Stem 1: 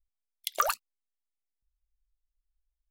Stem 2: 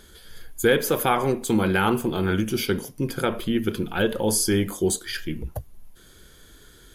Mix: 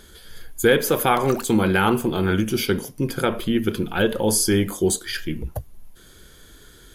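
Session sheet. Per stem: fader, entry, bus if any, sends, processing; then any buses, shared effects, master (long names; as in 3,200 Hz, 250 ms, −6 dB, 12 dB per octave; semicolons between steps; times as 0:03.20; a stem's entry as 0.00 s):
+2.0 dB, 0.70 s, no send, brickwall limiter −13.5 dBFS, peak gain reduction 6 dB; automatic ducking −8 dB, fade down 1.70 s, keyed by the second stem
+2.5 dB, 0.00 s, no send, no processing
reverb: not used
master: no processing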